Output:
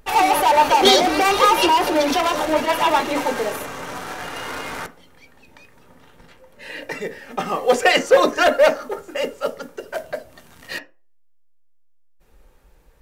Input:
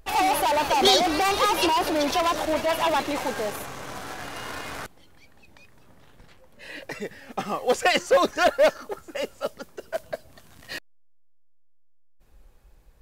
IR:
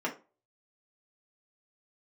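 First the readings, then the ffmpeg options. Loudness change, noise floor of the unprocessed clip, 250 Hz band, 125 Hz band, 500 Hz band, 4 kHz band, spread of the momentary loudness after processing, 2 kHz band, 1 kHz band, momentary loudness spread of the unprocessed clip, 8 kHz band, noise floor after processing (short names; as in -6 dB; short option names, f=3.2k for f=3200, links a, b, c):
+5.5 dB, -53 dBFS, +5.0 dB, +2.5 dB, +5.5 dB, +4.5 dB, 18 LU, +6.0 dB, +6.0 dB, 18 LU, +3.5 dB, -52 dBFS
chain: -filter_complex "[0:a]asplit=2[a][b];[1:a]atrim=start_sample=2205[c];[b][c]afir=irnorm=-1:irlink=0,volume=-8dB[d];[a][d]amix=inputs=2:normalize=0,volume=2dB"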